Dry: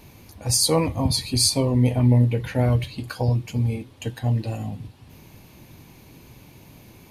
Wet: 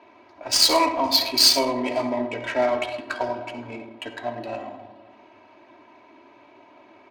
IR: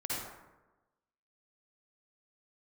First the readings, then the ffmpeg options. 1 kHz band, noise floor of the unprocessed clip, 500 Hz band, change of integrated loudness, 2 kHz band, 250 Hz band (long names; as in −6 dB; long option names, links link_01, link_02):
+8.0 dB, −50 dBFS, +2.5 dB, +1.0 dB, +7.0 dB, −5.5 dB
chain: -filter_complex "[0:a]highpass=640,lowpass=5300,aecho=1:1:522:0.0794,asplit=2[link_01][link_02];[1:a]atrim=start_sample=2205,highshelf=frequency=7300:gain=11.5[link_03];[link_02][link_03]afir=irnorm=-1:irlink=0,volume=-7.5dB[link_04];[link_01][link_04]amix=inputs=2:normalize=0,adynamicsmooth=sensitivity=3:basefreq=1400,aecho=1:1:3.1:0.88,volume=4dB"